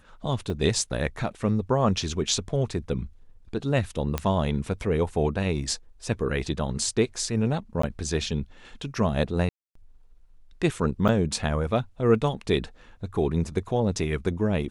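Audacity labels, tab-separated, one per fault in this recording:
0.500000	0.500000	drop-out 2.4 ms
4.180000	4.180000	click −11 dBFS
7.820000	7.830000	drop-out 14 ms
9.490000	9.750000	drop-out 264 ms
11.080000	11.090000	drop-out 7.3 ms

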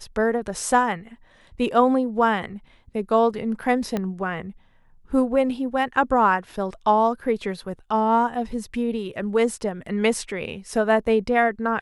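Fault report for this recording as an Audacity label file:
3.970000	3.970000	click −13 dBFS

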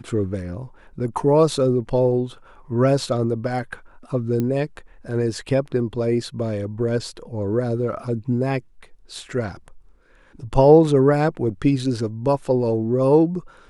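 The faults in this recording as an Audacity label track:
4.400000	4.400000	click −13 dBFS

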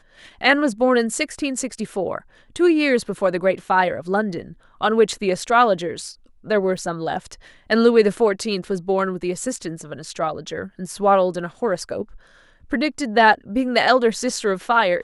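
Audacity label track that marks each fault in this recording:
6.770000	6.780000	drop-out 5.3 ms

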